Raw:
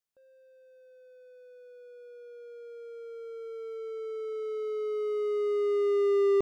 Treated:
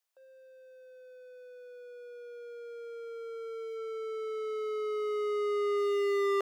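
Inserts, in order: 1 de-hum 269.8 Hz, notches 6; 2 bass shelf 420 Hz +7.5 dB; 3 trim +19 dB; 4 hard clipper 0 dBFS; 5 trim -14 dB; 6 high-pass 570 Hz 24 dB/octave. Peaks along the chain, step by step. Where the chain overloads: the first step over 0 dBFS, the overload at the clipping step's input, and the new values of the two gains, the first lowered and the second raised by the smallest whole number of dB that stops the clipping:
-18.0 dBFS, -15.0 dBFS, +4.0 dBFS, 0.0 dBFS, -14.0 dBFS, -22.5 dBFS; step 3, 4.0 dB; step 3 +15 dB, step 5 -10 dB

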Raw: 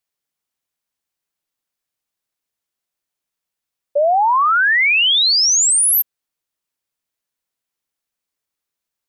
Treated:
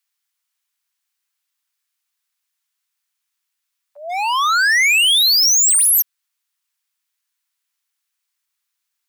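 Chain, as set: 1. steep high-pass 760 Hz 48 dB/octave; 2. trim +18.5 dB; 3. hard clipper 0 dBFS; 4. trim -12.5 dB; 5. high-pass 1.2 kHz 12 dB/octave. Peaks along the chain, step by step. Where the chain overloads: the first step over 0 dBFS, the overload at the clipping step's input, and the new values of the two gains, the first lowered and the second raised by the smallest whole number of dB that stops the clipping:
-11.0 dBFS, +7.5 dBFS, 0.0 dBFS, -12.5 dBFS, -8.5 dBFS; step 2, 7.5 dB; step 2 +10.5 dB, step 4 -4.5 dB

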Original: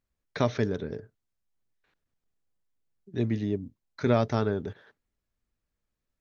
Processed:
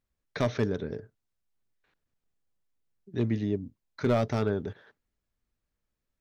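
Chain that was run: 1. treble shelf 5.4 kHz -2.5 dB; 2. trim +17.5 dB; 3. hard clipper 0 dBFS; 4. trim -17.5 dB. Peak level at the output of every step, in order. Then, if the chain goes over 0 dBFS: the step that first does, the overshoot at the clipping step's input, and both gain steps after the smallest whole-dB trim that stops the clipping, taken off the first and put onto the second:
-10.0 dBFS, +7.5 dBFS, 0.0 dBFS, -17.5 dBFS; step 2, 7.5 dB; step 2 +9.5 dB, step 4 -9.5 dB

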